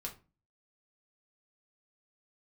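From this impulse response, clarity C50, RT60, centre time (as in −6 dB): 12.5 dB, 0.30 s, 14 ms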